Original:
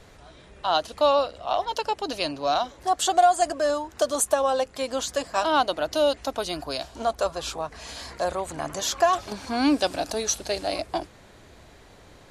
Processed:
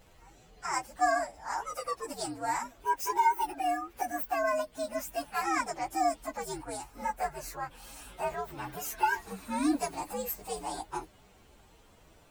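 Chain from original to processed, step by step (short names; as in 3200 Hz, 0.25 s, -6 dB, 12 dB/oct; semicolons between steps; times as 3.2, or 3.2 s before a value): inharmonic rescaling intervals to 124%; gain -4.5 dB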